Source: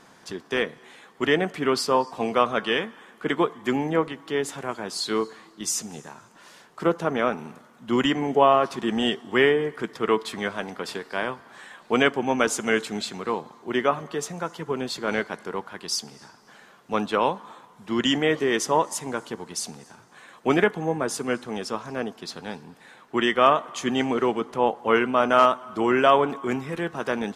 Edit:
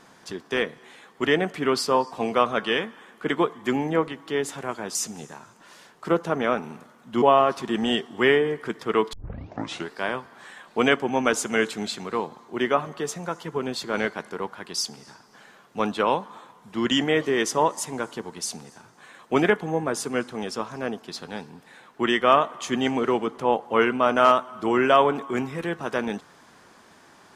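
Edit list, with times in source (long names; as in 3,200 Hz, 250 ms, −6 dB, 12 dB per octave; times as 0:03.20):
0:04.95–0:05.70: remove
0:07.97–0:08.36: remove
0:10.27: tape start 0.80 s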